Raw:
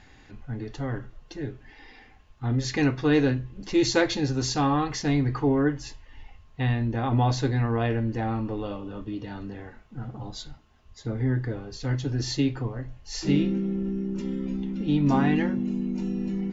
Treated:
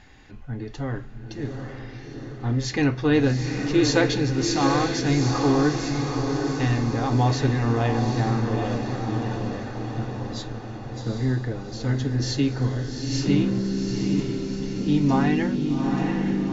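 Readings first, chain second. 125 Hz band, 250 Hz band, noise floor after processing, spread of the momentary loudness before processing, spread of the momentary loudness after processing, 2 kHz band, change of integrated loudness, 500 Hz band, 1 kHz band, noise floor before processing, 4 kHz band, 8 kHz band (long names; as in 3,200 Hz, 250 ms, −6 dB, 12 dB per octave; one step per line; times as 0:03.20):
+3.5 dB, +3.0 dB, −38 dBFS, 15 LU, 13 LU, +3.5 dB, +2.5 dB, +3.0 dB, +3.5 dB, −53 dBFS, +3.5 dB, can't be measured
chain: on a send: feedback delay with all-pass diffusion 794 ms, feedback 60%, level −4.5 dB
on the sum: level +1.5 dB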